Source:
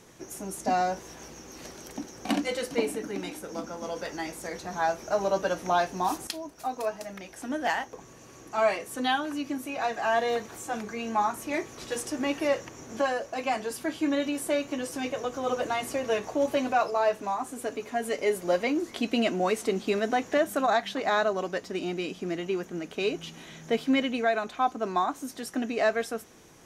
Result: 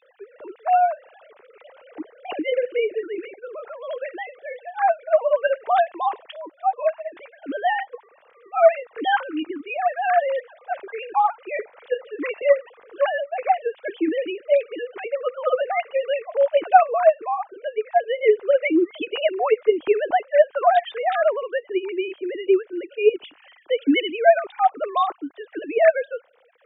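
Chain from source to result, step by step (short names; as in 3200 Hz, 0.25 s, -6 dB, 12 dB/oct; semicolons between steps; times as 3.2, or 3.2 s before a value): sine-wave speech; gain +7 dB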